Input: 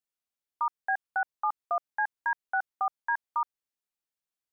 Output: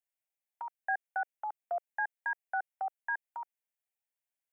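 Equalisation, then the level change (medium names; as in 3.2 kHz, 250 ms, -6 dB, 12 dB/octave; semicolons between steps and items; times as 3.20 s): high-pass 390 Hz 24 dB/octave; dynamic bell 1 kHz, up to -6 dB, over -43 dBFS, Q 1.9; static phaser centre 1.2 kHz, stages 6; 0.0 dB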